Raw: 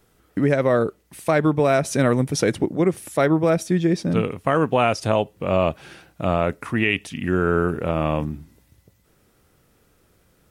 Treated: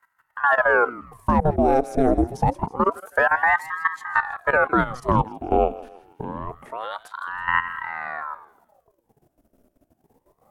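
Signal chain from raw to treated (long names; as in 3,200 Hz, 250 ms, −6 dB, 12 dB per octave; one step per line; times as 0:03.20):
graphic EQ with 10 bands 125 Hz +10 dB, 250 Hz −6 dB, 500 Hz +11 dB, 1,000 Hz −5 dB, 2,000 Hz −7 dB, 4,000 Hz −8 dB, 8,000 Hz −4 dB
output level in coarse steps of 14 dB
feedback echo with a high-pass in the loop 162 ms, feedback 51%, high-pass 620 Hz, level −14.5 dB
ring modulator whose carrier an LFO sweeps 790 Hz, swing 85%, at 0.26 Hz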